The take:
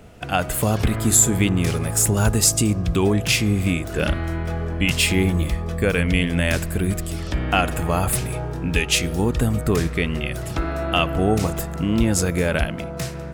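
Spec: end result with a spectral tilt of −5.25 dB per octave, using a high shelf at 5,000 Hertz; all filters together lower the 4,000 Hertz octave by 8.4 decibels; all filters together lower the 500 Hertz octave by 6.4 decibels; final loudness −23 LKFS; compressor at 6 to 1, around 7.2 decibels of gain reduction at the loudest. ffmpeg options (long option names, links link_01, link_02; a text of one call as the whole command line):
ffmpeg -i in.wav -af "equalizer=frequency=500:width_type=o:gain=-8.5,equalizer=frequency=4000:width_type=o:gain=-8.5,highshelf=frequency=5000:gain=-8,acompressor=threshold=-23dB:ratio=6,volume=5.5dB" out.wav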